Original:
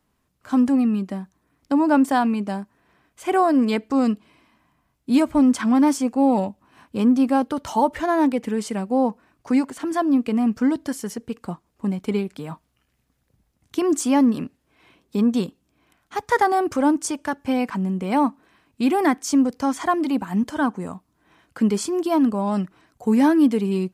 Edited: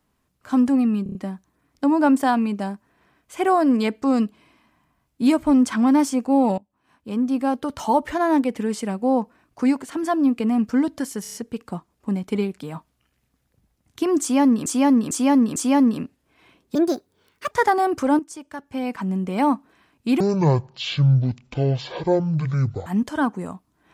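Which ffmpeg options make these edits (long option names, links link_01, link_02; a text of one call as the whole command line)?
ffmpeg -i in.wav -filter_complex "[0:a]asplit=18[link_01][link_02][link_03][link_04][link_05][link_06][link_07][link_08][link_09][link_10][link_11][link_12][link_13][link_14][link_15][link_16][link_17][link_18];[link_01]atrim=end=1.062[link_19];[link_02]atrim=start=1.028:end=1.062[link_20];[link_03]atrim=start=1.028:end=1.062[link_21];[link_04]atrim=start=1.028:end=1.062[link_22];[link_05]atrim=start=1.028:end=6.46,asetpts=PTS-STARTPTS,afade=type=out:start_time=5.428:duration=0.004:curve=hsin:silence=0.0707946[link_23];[link_06]atrim=start=6.46:end=11.132,asetpts=PTS-STARTPTS,afade=type=in:duration=1.26:silence=0.0707946[link_24];[link_07]atrim=start=11.098:end=11.132[link_25];[link_08]atrim=start=11.098:end=11.132[link_26];[link_09]atrim=start=11.098:end=11.132[link_27];[link_10]atrim=start=11.098:end=14.422[link_28];[link_11]atrim=start=13.968:end=14.422[link_29];[link_12]atrim=start=13.968:end=14.422[link_30];[link_13]atrim=start=13.968:end=15.164[link_31];[link_14]atrim=start=15.16:end=16.25,asetpts=PTS-STARTPTS,asetrate=63063,aresample=44100[link_32];[link_15]atrim=start=16.246:end=16.93,asetpts=PTS-STARTPTS,afade=type=out:start_time=0.68:duration=0.004:curve=hsin:silence=0.251189[link_33];[link_16]atrim=start=16.93:end=18.944,asetpts=PTS-STARTPTS,afade=type=in:duration=0.95:curve=qua:silence=0.251189[link_34];[link_17]atrim=start=18.94:end=20.27,asetpts=PTS-STARTPTS,asetrate=22050,aresample=44100[link_35];[link_18]atrim=start=20.266[link_36];[link_19][link_20]acrossfade=duration=0.004:curve1=hsin:curve2=hsin[link_37];[link_37][link_21]acrossfade=duration=0.004:curve1=hsin:curve2=hsin[link_38];[link_38][link_22]acrossfade=duration=0.004:curve1=hsin:curve2=hsin[link_39];[link_23][link_24]concat=n=2:v=0:a=1[link_40];[link_39][link_40]acrossfade=duration=0.004:curve1=hsin:curve2=hsin[link_41];[link_41][link_25]acrossfade=duration=0.004:curve1=hsin:curve2=hsin[link_42];[link_42][link_26]acrossfade=duration=0.004:curve1=hsin:curve2=hsin[link_43];[link_43][link_27]acrossfade=duration=0.004:curve1=hsin:curve2=hsin[link_44];[link_44][link_28]acrossfade=duration=0.004:curve1=hsin:curve2=hsin[link_45];[link_45][link_29]acrossfade=duration=0.004:curve1=hsin:curve2=hsin[link_46];[link_46][link_30]acrossfade=duration=0.004:curve1=hsin:curve2=hsin[link_47];[link_47][link_31]acrossfade=duration=0.004:curve1=hsin:curve2=hsin[link_48];[link_48][link_32]acrossfade=duration=0.004:curve1=hsin:curve2=hsin[link_49];[link_33][link_34]concat=n=2:v=0:a=1[link_50];[link_49][link_50]acrossfade=duration=0.004:curve1=hsin:curve2=hsin[link_51];[link_51][link_35]acrossfade=duration=0.004:curve1=hsin:curve2=hsin[link_52];[link_52][link_36]acrossfade=duration=0.004:curve1=hsin:curve2=hsin" out.wav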